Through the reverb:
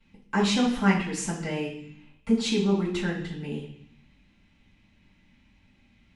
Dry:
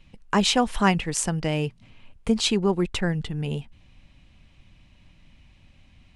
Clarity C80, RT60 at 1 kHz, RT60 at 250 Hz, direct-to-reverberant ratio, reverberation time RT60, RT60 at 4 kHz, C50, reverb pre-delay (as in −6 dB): 9.5 dB, 0.65 s, 0.95 s, −12.5 dB, 0.60 s, 0.80 s, 6.0 dB, 3 ms